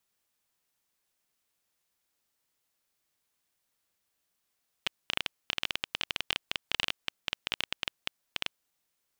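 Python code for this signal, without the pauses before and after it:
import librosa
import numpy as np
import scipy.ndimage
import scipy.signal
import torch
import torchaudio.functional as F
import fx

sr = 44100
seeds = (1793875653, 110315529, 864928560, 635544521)

y = fx.geiger_clicks(sr, seeds[0], length_s=3.97, per_s=13.0, level_db=-11.0)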